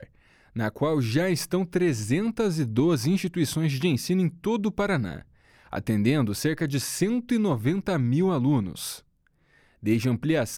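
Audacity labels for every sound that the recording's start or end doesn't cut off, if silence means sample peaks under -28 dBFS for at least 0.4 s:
0.560000	5.170000	sound
5.730000	8.930000	sound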